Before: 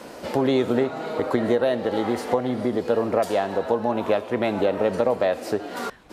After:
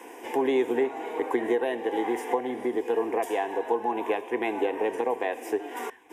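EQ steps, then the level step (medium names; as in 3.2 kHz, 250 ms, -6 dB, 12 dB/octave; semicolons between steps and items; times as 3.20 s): high-pass 290 Hz 12 dB/octave; static phaser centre 880 Hz, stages 8; 0.0 dB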